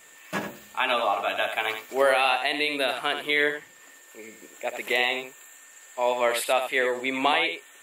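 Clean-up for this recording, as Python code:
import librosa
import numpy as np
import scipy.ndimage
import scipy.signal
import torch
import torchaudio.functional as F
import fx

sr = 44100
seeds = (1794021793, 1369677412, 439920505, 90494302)

y = fx.notch(x, sr, hz=1800.0, q=30.0)
y = fx.fix_echo_inverse(y, sr, delay_ms=82, level_db=-8.0)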